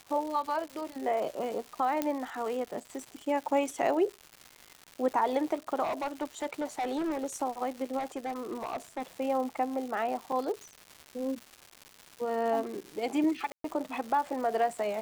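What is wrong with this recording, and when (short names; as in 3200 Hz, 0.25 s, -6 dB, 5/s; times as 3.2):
crackle 320/s -37 dBFS
2.02 pop -14 dBFS
5.83–7.26 clipped -28.5 dBFS
7.98–9.03 clipped -30 dBFS
10.32 gap 4.5 ms
13.52–13.64 gap 0.123 s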